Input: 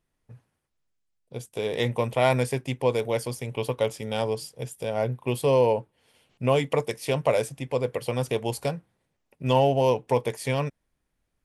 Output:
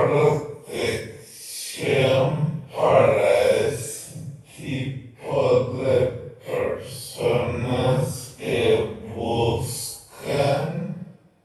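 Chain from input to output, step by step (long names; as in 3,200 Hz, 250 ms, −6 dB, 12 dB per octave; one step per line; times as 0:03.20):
extreme stretch with random phases 5.4×, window 0.05 s, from 0:06.74
coupled-rooms reverb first 0.79 s, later 3.3 s, from −22 dB, DRR 13.5 dB
level +4 dB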